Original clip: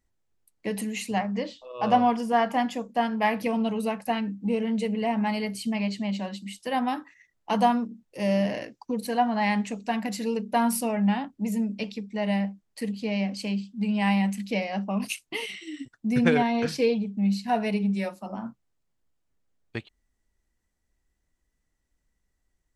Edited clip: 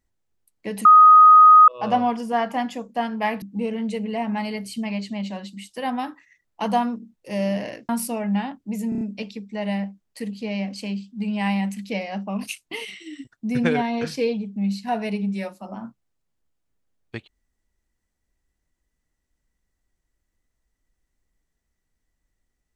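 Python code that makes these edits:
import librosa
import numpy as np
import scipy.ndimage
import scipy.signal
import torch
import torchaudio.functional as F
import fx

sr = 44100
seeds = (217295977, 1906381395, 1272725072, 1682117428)

y = fx.edit(x, sr, fx.bleep(start_s=0.85, length_s=0.83, hz=1250.0, db=-6.5),
    fx.cut(start_s=3.42, length_s=0.89),
    fx.cut(start_s=8.78, length_s=1.84),
    fx.stutter(start_s=11.62, slice_s=0.03, count=5), tone=tone)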